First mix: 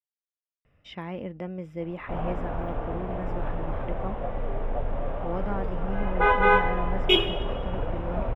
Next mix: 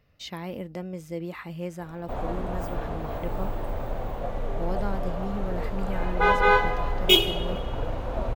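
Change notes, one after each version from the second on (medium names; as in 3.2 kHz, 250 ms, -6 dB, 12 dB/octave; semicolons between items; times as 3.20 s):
speech: entry -0.65 s; master: remove Savitzky-Golay filter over 25 samples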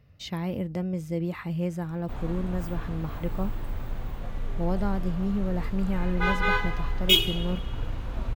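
speech: add peaking EQ 100 Hz +11.5 dB 2.1 oct; background: add peaking EQ 610 Hz -14.5 dB 1.5 oct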